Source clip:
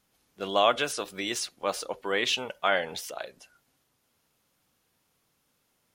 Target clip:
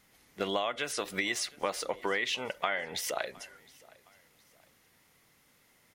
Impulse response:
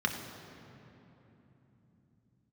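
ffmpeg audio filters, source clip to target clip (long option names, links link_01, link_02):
-filter_complex "[0:a]equalizer=frequency=2000:width_type=o:width=0.26:gain=11,acompressor=threshold=-34dB:ratio=12,asplit=2[link_01][link_02];[link_02]aecho=0:1:714|1428:0.0631|0.024[link_03];[link_01][link_03]amix=inputs=2:normalize=0,volume=6dB"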